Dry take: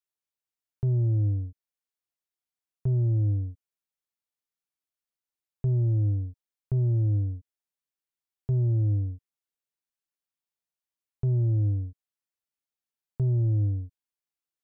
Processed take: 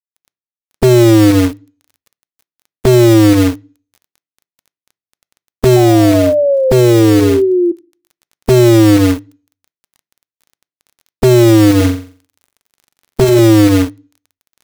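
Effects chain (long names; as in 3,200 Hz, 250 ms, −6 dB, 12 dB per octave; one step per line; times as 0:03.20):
ceiling on every frequency bin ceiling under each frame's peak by 25 dB
dynamic equaliser 330 Hz, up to +6 dB, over −40 dBFS, Q 1.4
in parallel at −2 dB: output level in coarse steps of 11 dB
on the sum: surface crackle 17 per second −51 dBFS
log-companded quantiser 4 bits
0:05.76–0:07.72: sound drawn into the spectrogram fall 340–760 Hz −27 dBFS
0:11.76–0:13.39: flutter between parallel walls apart 7.5 metres, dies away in 0.43 s
on a send at −21 dB: convolution reverb RT60 0.40 s, pre-delay 3 ms
on the sum: boost into a limiter +17 dB
level −1 dB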